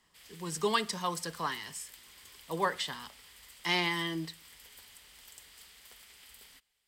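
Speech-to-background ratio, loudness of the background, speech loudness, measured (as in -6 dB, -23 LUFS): 19.0 dB, -52.5 LUFS, -33.5 LUFS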